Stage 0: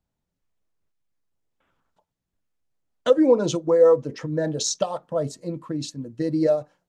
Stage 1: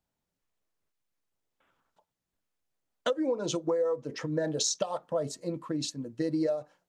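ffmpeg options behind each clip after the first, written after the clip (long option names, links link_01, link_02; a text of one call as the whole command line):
ffmpeg -i in.wav -af "lowshelf=frequency=230:gain=-8.5,acompressor=threshold=-25dB:ratio=16" out.wav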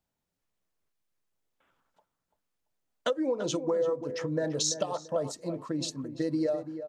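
ffmpeg -i in.wav -filter_complex "[0:a]asplit=2[link_01][link_02];[link_02]adelay=339,lowpass=frequency=1500:poles=1,volume=-10dB,asplit=2[link_03][link_04];[link_04]adelay=339,lowpass=frequency=1500:poles=1,volume=0.29,asplit=2[link_05][link_06];[link_06]adelay=339,lowpass=frequency=1500:poles=1,volume=0.29[link_07];[link_01][link_03][link_05][link_07]amix=inputs=4:normalize=0" out.wav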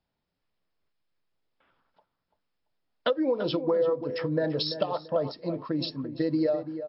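ffmpeg -i in.wav -af "volume=3.5dB" -ar 12000 -c:a libmp3lame -b:a 48k out.mp3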